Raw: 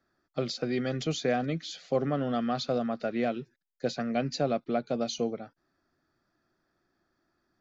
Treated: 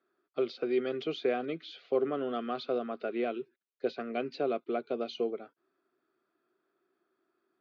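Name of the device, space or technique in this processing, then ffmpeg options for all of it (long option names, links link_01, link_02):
phone earpiece: -af "highpass=380,equalizer=frequency=390:width_type=q:width=4:gain=9,equalizer=frequency=570:width_type=q:width=4:gain=-5,equalizer=frequency=830:width_type=q:width=4:gain=-7,equalizer=frequency=1800:width_type=q:width=4:gain=-9,lowpass=frequency=3300:width=0.5412,lowpass=frequency=3300:width=1.3066"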